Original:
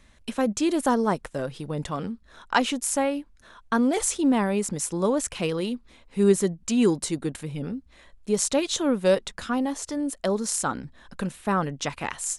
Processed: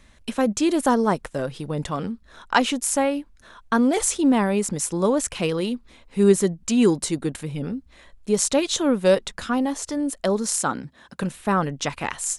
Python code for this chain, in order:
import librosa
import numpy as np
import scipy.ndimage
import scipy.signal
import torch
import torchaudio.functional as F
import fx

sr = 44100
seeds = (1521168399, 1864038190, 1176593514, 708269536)

y = fx.highpass(x, sr, hz=110.0, slope=12, at=(10.6, 11.23))
y = y * librosa.db_to_amplitude(3.0)